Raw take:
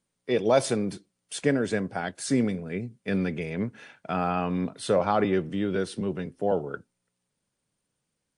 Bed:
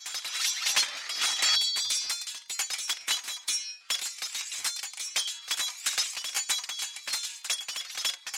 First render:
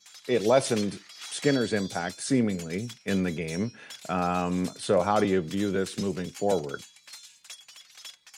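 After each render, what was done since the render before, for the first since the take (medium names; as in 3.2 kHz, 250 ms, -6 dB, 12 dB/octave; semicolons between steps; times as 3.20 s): add bed -14 dB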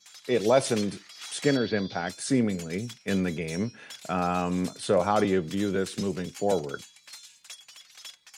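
1.57–2.07 s: steep low-pass 5.2 kHz 48 dB/octave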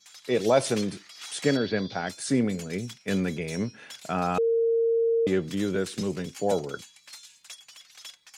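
4.38–5.27 s: bleep 459 Hz -20 dBFS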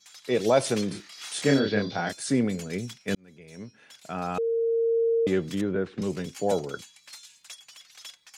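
0.88–2.13 s: doubling 29 ms -3 dB; 3.15–4.98 s: fade in; 5.61–6.02 s: low-pass 1.7 kHz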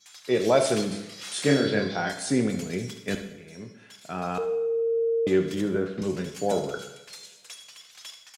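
delay 74 ms -14 dB; two-slope reverb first 0.89 s, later 2.7 s, from -24 dB, DRR 5.5 dB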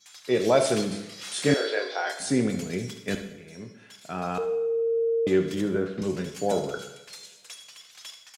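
1.54–2.20 s: inverse Chebyshev high-pass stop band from 200 Hz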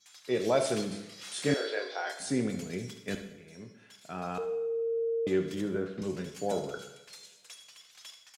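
trim -6 dB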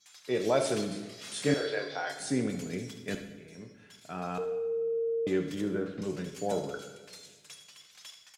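simulated room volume 1700 m³, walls mixed, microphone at 0.4 m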